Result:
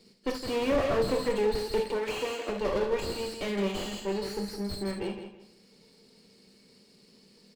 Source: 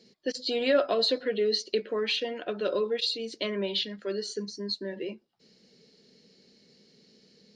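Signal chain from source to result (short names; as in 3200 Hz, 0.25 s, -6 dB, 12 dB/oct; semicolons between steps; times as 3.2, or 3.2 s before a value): minimum comb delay 0.4 ms; 1.8–2.49 HPF 240 Hz 24 dB/oct; feedback echo 0.163 s, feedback 27%, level -9 dB; on a send at -4 dB: reverb, pre-delay 3 ms; on the sum: slew limiter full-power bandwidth 45 Hz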